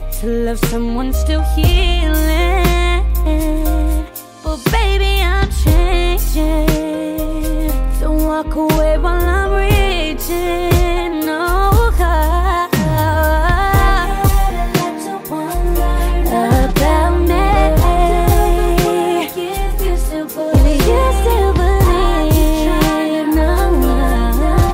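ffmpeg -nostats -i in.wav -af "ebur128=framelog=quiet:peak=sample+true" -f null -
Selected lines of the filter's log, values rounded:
Integrated loudness:
  I:         -15.2 LUFS
  Threshold: -25.2 LUFS
Loudness range:
  LRA:         2.5 LU
  Threshold: -35.2 LUFS
  LRA low:   -16.2 LUFS
  LRA high:  -13.8 LUFS
Sample peak:
  Peak:       -2.8 dBFS
True peak:
  Peak:       -2.6 dBFS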